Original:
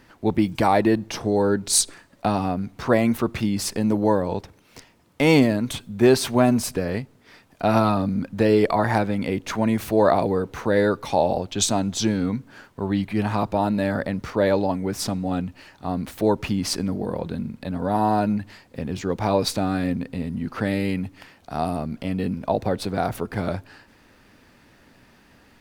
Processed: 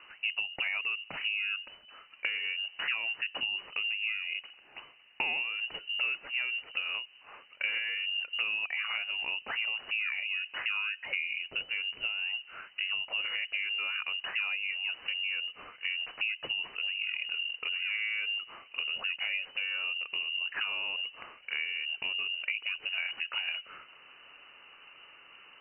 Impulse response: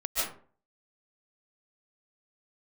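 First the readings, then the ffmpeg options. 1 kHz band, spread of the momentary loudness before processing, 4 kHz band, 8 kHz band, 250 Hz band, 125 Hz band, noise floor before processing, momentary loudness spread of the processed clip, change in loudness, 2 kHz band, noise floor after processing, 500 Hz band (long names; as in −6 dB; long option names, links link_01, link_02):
−22.0 dB, 11 LU, +1.5 dB, below −40 dB, below −40 dB, below −40 dB, −56 dBFS, 10 LU, −9.0 dB, +2.5 dB, −57 dBFS, −32.5 dB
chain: -af "acompressor=threshold=-30dB:ratio=10,lowpass=frequency=2600:width_type=q:width=0.5098,lowpass=frequency=2600:width_type=q:width=0.6013,lowpass=frequency=2600:width_type=q:width=0.9,lowpass=frequency=2600:width_type=q:width=2.563,afreqshift=-3000"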